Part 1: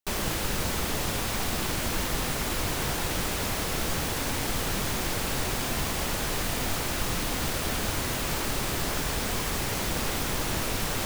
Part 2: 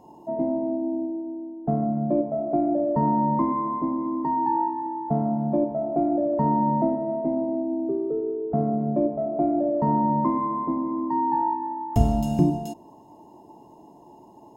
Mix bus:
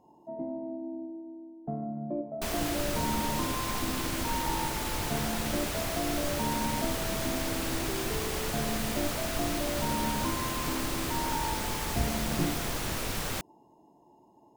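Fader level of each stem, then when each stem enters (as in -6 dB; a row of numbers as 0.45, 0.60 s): -4.0, -11.0 dB; 2.35, 0.00 s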